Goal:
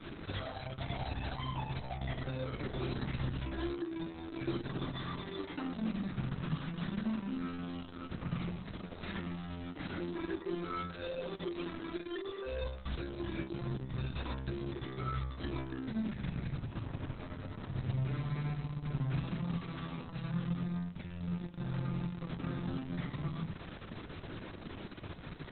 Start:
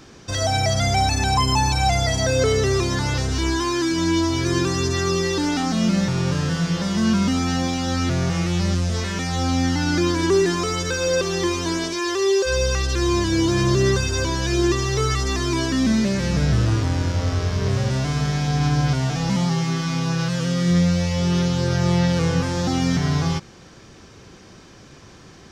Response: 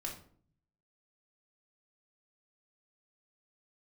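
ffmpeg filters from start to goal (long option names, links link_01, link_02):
-filter_complex "[0:a]adynamicequalizer=threshold=0.00708:dfrequency=570:dqfactor=5.2:tfrequency=570:tqfactor=5.2:attack=5:release=100:ratio=0.375:range=2.5:mode=cutabove:tftype=bell,acompressor=threshold=-30dB:ratio=16,asoftclip=type=tanh:threshold=-34.5dB[link_01];[1:a]atrim=start_sample=2205[link_02];[link_01][link_02]afir=irnorm=-1:irlink=0,volume=1dB" -ar 48000 -c:a libopus -b:a 6k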